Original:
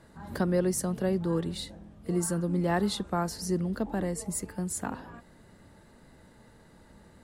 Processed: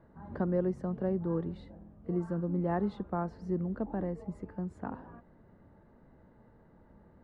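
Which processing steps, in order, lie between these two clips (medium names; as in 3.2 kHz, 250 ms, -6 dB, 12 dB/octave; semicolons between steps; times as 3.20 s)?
low-pass 1.2 kHz 12 dB/octave; trim -3.5 dB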